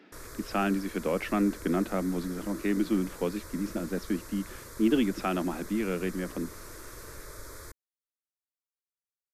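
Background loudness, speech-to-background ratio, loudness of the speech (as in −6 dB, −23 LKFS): −45.0 LKFS, 14.5 dB, −30.5 LKFS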